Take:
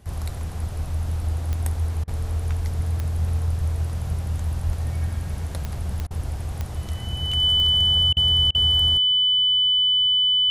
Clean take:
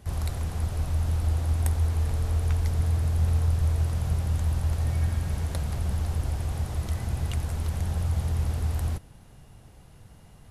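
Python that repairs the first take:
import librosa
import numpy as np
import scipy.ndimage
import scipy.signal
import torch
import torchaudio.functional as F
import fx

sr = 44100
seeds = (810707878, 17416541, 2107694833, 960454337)

y = fx.fix_declick_ar(x, sr, threshold=10.0)
y = fx.notch(y, sr, hz=3000.0, q=30.0)
y = fx.fix_deplosive(y, sr, at_s=(4.65,))
y = fx.fix_interpolate(y, sr, at_s=(2.04, 6.07, 8.13, 8.51), length_ms=36.0)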